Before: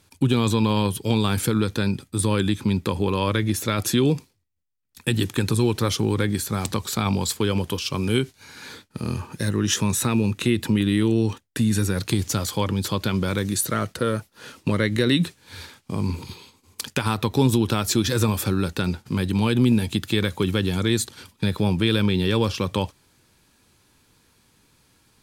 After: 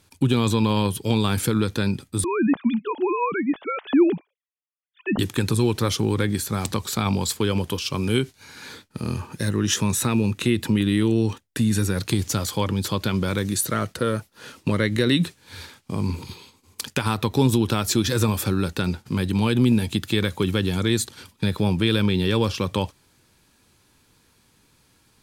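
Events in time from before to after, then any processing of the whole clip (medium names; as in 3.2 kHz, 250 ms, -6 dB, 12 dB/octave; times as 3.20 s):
2.24–5.19 s: formants replaced by sine waves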